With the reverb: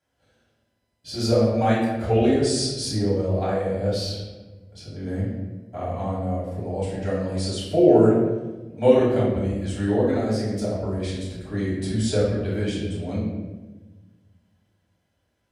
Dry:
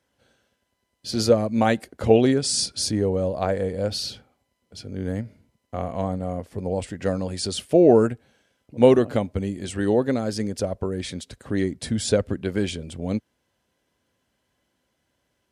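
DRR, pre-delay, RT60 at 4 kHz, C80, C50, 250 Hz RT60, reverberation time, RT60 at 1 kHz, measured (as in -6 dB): -8.5 dB, 3 ms, 0.80 s, 4.0 dB, 1.0 dB, 1.7 s, 1.2 s, 1.0 s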